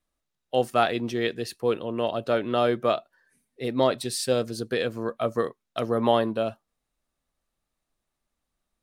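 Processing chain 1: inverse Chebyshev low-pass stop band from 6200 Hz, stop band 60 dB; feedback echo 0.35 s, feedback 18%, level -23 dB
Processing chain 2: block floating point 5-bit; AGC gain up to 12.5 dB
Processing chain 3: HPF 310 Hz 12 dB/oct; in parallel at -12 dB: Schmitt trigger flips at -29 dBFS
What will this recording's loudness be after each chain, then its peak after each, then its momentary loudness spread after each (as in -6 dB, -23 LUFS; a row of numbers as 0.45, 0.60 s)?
-27.0, -18.5, -26.5 LUFS; -8.0, -1.0, -7.5 dBFS; 8, 7, 7 LU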